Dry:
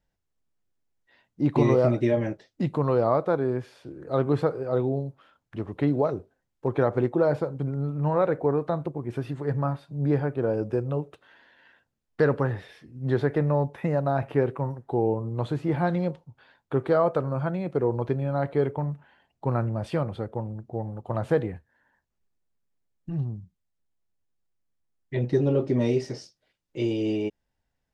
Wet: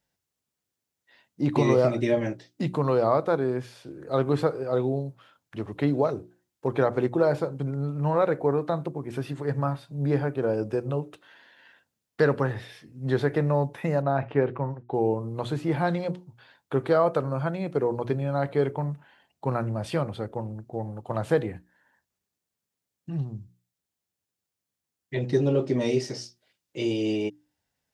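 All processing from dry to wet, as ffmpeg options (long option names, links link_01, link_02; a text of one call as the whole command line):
ffmpeg -i in.wav -filter_complex "[0:a]asettb=1/sr,asplit=3[link_01][link_02][link_03];[link_01]atrim=end=14.024[link_04];[link_02]atrim=start=14.02:end=14.94,asetpts=PTS-STARTPTS,afade=type=in:duration=0.004:curve=qsin,afade=type=out:start_time=0.916:duration=0.004:curve=qsin,lowpass=2900,agate=range=-33dB:threshold=-41dB:ratio=3:release=100:detection=peak[link_05];[link_03]atrim=start=14.936[link_06];[link_04][link_05]acrossfade=duration=0.004:curve1=hsin:curve2=qsin[link_07];[link_07][link_06]acrossfade=duration=0.004:curve1=qsin:curve2=hsin,highpass=86,highshelf=frequency=3000:gain=8.5,bandreject=frequency=60:width_type=h:width=6,bandreject=frequency=120:width_type=h:width=6,bandreject=frequency=180:width_type=h:width=6,bandreject=frequency=240:width_type=h:width=6,bandreject=frequency=300:width_type=h:width=6,bandreject=frequency=360:width_type=h:width=6" out.wav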